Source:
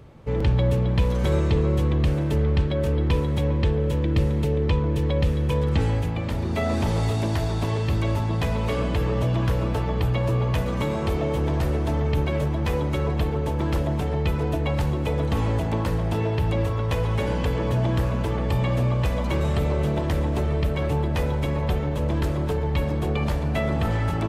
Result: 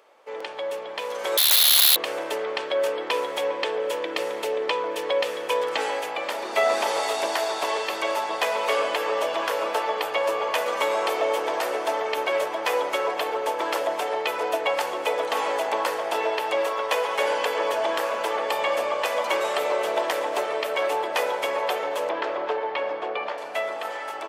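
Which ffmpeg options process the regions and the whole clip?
-filter_complex "[0:a]asettb=1/sr,asplit=3[a][b][c];[a]atrim=end=1.374[d];[b]atrim=start=1.37:end=1.96,asetpts=PTS-STARTPTS,afade=t=in:d=0.004:c=qsin,afade=t=out:st=0.586:d=0.004:c=qsin,lowpass=f=3.4k:t=q:w=0.5098,lowpass=f=3.4k:t=q:w=0.6013,lowpass=f=3.4k:t=q:w=0.9,lowpass=f=3.4k:t=q:w=2.563,afreqshift=-4000,aeval=exprs='(mod(6.68*val(0)+1,2)-1)/6.68':c=same[e];[c]atrim=start=1.956[f];[d][e]acrossfade=d=0.004:c1=hsin:c2=qsin[g];[g][f]acrossfade=d=0.004:c1=qsin:c2=hsin,asettb=1/sr,asplit=3[h][i][j];[h]atrim=end=22.094[k];[i]atrim=start=22.09:end=23.38,asetpts=PTS-STARTPTS,afade=t=in:d=0.004:c=qsin,afade=t=out:st=1.286:d=0.004:c=qsin,lowpass=4.2k,aemphasis=mode=reproduction:type=50fm[l];[j]atrim=start=23.376[m];[k][l]acrossfade=d=0.004:c1=hsin:c2=qsin[n];[n][m]acrossfade=d=0.004:c1=qsin:c2=hsin,highpass=f=520:w=0.5412,highpass=f=520:w=1.3066,bandreject=f=3.9k:w=20,dynaudnorm=f=130:g=21:m=7.5dB"

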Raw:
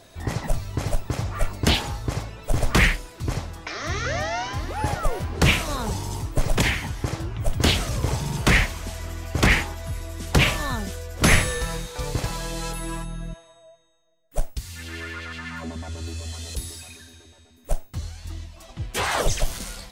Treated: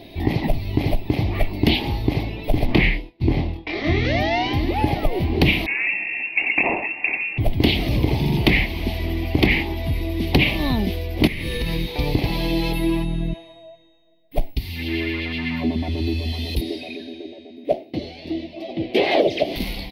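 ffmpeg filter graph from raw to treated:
-filter_complex "[0:a]asettb=1/sr,asplit=3[a][b][c];[a]atrim=end=2.664[d];[b]atrim=start=2.66:end=4.05,asetpts=PTS-STARTPTS,afade=t=in:d=0.004:c=qsin,afade=t=out:st=1.386:d=0.004:c=qsin,aemphasis=mode=reproduction:type=50kf,agate=range=-33dB:threshold=-31dB:ratio=3:release=100:detection=peak,asplit=2[e][f];[f]adelay=24,volume=-3dB[g];[e][g]amix=inputs=2:normalize=0,atrim=end_sample=61299[h];[c]atrim=start=4.046[i];[d][h]acrossfade=d=0.004:c1=hsin:c2=qsin[j];[j][i]acrossfade=d=0.004:c1=qsin:c2=hsin,asettb=1/sr,asplit=3[k][l][m];[k]atrim=end=5.664[n];[l]atrim=start=5.66:end=7.38,asetpts=PTS-STARTPTS,afade=t=in:d=0.004:c=qsin,afade=t=out:st=1.716:d=0.004:c=qsin,highpass=f=280:p=1,lowpass=f=2.4k:t=q:w=0.5098,lowpass=f=2.4k:t=q:w=0.6013,lowpass=f=2.4k:t=q:w=0.9,lowpass=f=2.4k:t=q:w=2.563,afreqshift=-2800[o];[m]atrim=start=7.376[p];[n][o]acrossfade=d=0.004:c1=hsin:c2=qsin[q];[q][p]acrossfade=d=0.004:c1=qsin:c2=hsin,asettb=1/sr,asplit=3[r][s][t];[r]atrim=end=11.274[u];[s]atrim=start=11.27:end=11.88,asetpts=PTS-STARTPTS,afade=t=in:d=0.004:c=qsin,afade=t=out:st=0.606:d=0.004:c=qsin,equalizer=f=750:t=o:w=0.43:g=-12.5,acompressor=threshold=-26dB:ratio=10:attack=3.2:release=140:knee=1:detection=peak[v];[t]atrim=start=11.876[w];[u][v]acrossfade=d=0.004:c1=hsin:c2=qsin[x];[x][w]acrossfade=d=0.004:c1=qsin:c2=hsin,asettb=1/sr,asplit=3[y][z][aa];[y]atrim=end=16.614[ab];[z]atrim=start=16.61:end=19.56,asetpts=PTS-STARTPTS,afade=t=in:d=0.004:c=qsin,afade=t=out:st=2.946:d=0.004:c=qsin,highpass=310,lowpass=6.2k,lowshelf=f=750:t=q:w=3:g=7[ac];[aa]atrim=start=19.556[ad];[ab][ac]acrossfade=d=0.004:c1=hsin:c2=qsin[ae];[ae][ad]acrossfade=d=0.004:c1=qsin:c2=hsin,firequalizer=gain_entry='entry(120,0);entry(320,10);entry(500,-3);entry(770,1);entry(1400,-20);entry(2100,4);entry(4400,-1);entry(7200,-30);entry(12000,-3)':delay=0.05:min_phase=1,acompressor=threshold=-24dB:ratio=3,volume=8dB"

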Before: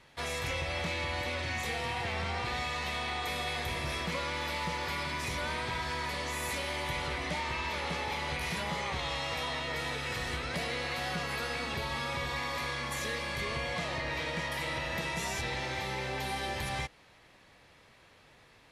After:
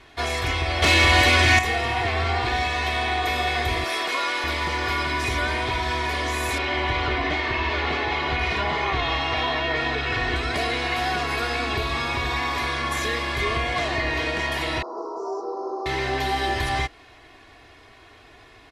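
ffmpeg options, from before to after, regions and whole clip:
-filter_complex "[0:a]asettb=1/sr,asplit=3[a][b][c];[a]atrim=end=0.824[d];[b]atrim=start=0.82:end=1.59,asetpts=PTS-STARTPTS,afade=t=in:d=0.004:c=qsin,afade=t=out:st=0.766:d=0.004:c=qsin,highshelf=f=3.2k:g=8.5,aeval=exprs='0.0794*sin(PI/2*1.58*val(0)/0.0794)':c=same[e];[c]atrim=start=1.586[f];[d][e]acrossfade=d=0.004:c1=hsin:c2=qsin[g];[g][f]acrossfade=d=0.004:c1=qsin:c2=hsin,asettb=1/sr,asplit=3[h][i][j];[h]atrim=end=3.844[k];[i]atrim=start=3.84:end=4.44,asetpts=PTS-STARTPTS,afade=t=in:d=0.004:c=qsin,afade=t=out:st=0.596:d=0.004:c=qsin,highpass=410,highshelf=f=8.6k:g=7[l];[j]atrim=start=4.436[m];[k][l]acrossfade=d=0.004:c1=hsin:c2=qsin[n];[n][m]acrossfade=d=0.004:c1=qsin:c2=hsin,asettb=1/sr,asplit=3[o][p][q];[o]atrim=end=6.584[r];[p]atrim=start=6.58:end=10.36,asetpts=PTS-STARTPTS,afade=t=in:d=0.004:c=qsin,afade=t=out:st=3.776:d=0.004:c=qsin,lowpass=4.2k,acontrast=29,flanger=delay=5.8:depth=4.2:regen=-65:speed=1.3:shape=sinusoidal[s];[q]atrim=start=10.356[t];[r][s]acrossfade=d=0.004:c1=hsin:c2=qsin[u];[u][t]acrossfade=d=0.004:c1=qsin:c2=hsin,asettb=1/sr,asplit=3[v][w][x];[v]atrim=end=14.824[y];[w]atrim=start=14.82:end=15.86,asetpts=PTS-STARTPTS,afade=t=in:d=0.004:c=qsin,afade=t=out:st=1.036:d=0.004:c=qsin,asuperstop=centerf=2600:order=12:qfactor=0.64,highpass=f=390:w=0.5412,highpass=f=390:w=1.3066,equalizer=f=400:t=q:w=4:g=8,equalizer=f=670:t=q:w=4:g=-8,equalizer=f=1.6k:t=q:w=4:g=-9,equalizer=f=2.9k:t=q:w=4:g=8,lowpass=f=3.7k:w=0.5412,lowpass=f=3.7k:w=1.3066,asplit=2[z][aa];[aa]adelay=44,volume=-12.5dB[ab];[z][ab]amix=inputs=2:normalize=0,atrim=end_sample=45864[ac];[x]atrim=start=15.856[ad];[y][ac]acrossfade=d=0.004:c1=hsin:c2=qsin[ae];[ae][ad]acrossfade=d=0.004:c1=qsin:c2=hsin,highshelf=f=5.5k:g=-8.5,aecho=1:1:2.8:0.85,volume=9dB"

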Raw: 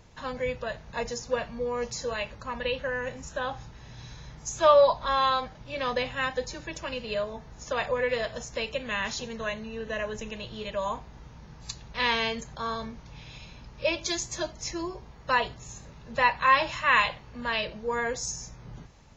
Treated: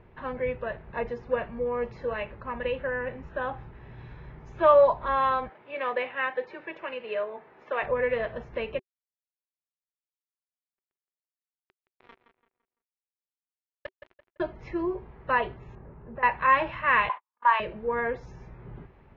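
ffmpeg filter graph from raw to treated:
-filter_complex "[0:a]asettb=1/sr,asplit=3[a][b][c];[a]atrim=end=5.494[d];[b]atrim=start=5.49:end=7.83,asetpts=PTS-STARTPTS,afade=t=in:d=0.004:c=qsin,afade=t=out:st=2.336:d=0.004:c=qsin,highpass=400,lowpass=6.2k,equalizer=f=2.3k:w=1.9:g=3[e];[c]atrim=start=7.826[f];[d][e]acrossfade=d=0.004:c1=hsin:c2=qsin[g];[g][f]acrossfade=d=0.004:c1=qsin:c2=hsin,asettb=1/sr,asplit=3[h][i][j];[h]atrim=end=8.794[k];[i]atrim=start=8.79:end=14.4,asetpts=PTS-STARTPTS,afade=t=in:d=0.004:c=qsin,afade=t=out:st=5.606:d=0.004:c=qsin,asuperstop=centerf=2000:order=8:qfactor=1,acrusher=bits=2:mix=0:aa=0.5,asplit=2[l][m];[m]adelay=169,lowpass=f=4.1k:p=1,volume=-10dB,asplit=2[n][o];[o]adelay=169,lowpass=f=4.1k:p=1,volume=0.36,asplit=2[p][q];[q]adelay=169,lowpass=f=4.1k:p=1,volume=0.36,asplit=2[r][s];[s]adelay=169,lowpass=f=4.1k:p=1,volume=0.36[t];[l][n][p][r][t]amix=inputs=5:normalize=0,atrim=end_sample=247401[u];[j]atrim=start=14.396[v];[k][u]acrossfade=d=0.004:c1=hsin:c2=qsin[w];[w][v]acrossfade=d=0.004:c1=qsin:c2=hsin,asettb=1/sr,asplit=3[x][y][z];[x]atrim=end=15.754[aa];[y]atrim=start=15.75:end=16.23,asetpts=PTS-STARTPTS,afade=t=in:d=0.004:c=qsin,afade=t=out:st=0.476:d=0.004:c=qsin,lowpass=1.3k,acompressor=threshold=-40dB:ratio=2.5:attack=3.2:release=140:knee=1:detection=peak[ab];[z]atrim=start=16.226[ac];[aa][ab]acrossfade=d=0.004:c1=hsin:c2=qsin[ad];[ad][ac]acrossfade=d=0.004:c1=qsin:c2=hsin,asettb=1/sr,asplit=3[ae][af][ag];[ae]atrim=end=17.094[ah];[af]atrim=start=17.09:end=17.6,asetpts=PTS-STARTPTS,afade=t=in:d=0.004:c=qsin,afade=t=out:st=0.506:d=0.004:c=qsin,highpass=f=1k:t=q:w=8,agate=range=-51dB:threshold=-39dB:ratio=16:release=100:detection=peak[ai];[ag]atrim=start=17.596[aj];[ah][ai]acrossfade=d=0.004:c1=hsin:c2=qsin[ak];[ak][aj]acrossfade=d=0.004:c1=qsin:c2=hsin,lowpass=f=2.4k:w=0.5412,lowpass=f=2.4k:w=1.3066,equalizer=f=380:t=o:w=0.29:g=10"

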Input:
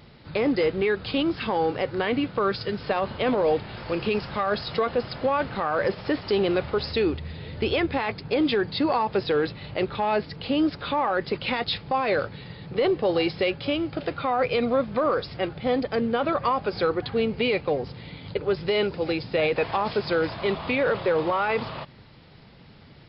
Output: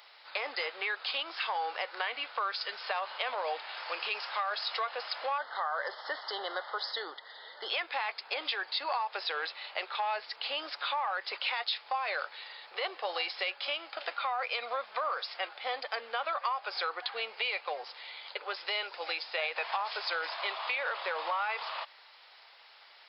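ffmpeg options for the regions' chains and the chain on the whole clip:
-filter_complex "[0:a]asettb=1/sr,asplit=3[a][b][c];[a]atrim=end=5.384[d];[b]atrim=start=5.38:end=7.7,asetpts=PTS-STARTPTS,afade=t=in:d=0.004:c=qsin,afade=t=out:st=2.316:d=0.004:c=qsin,asuperstop=centerf=2500:order=8:qfactor=2.5,highshelf=f=4.2k:g=-8[e];[c]atrim=start=7.696[f];[d][e]acrossfade=d=0.004:c1=hsin:c2=qsin[g];[g][f]acrossfade=d=0.004:c1=qsin:c2=hsin,highpass=f=750:w=0.5412,highpass=f=750:w=1.3066,highshelf=f=4.8k:g=4.5,acompressor=threshold=-30dB:ratio=4"

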